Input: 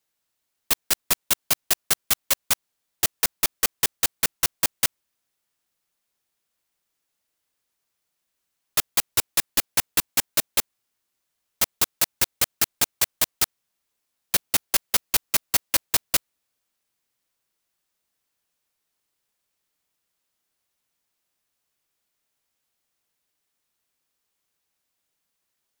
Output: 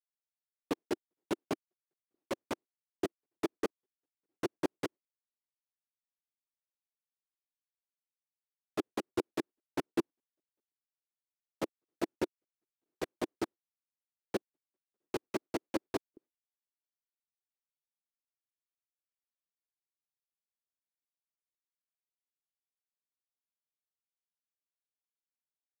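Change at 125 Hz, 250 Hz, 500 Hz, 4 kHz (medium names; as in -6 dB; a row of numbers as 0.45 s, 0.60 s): -9.0 dB, +3.0 dB, +0.5 dB, -23.5 dB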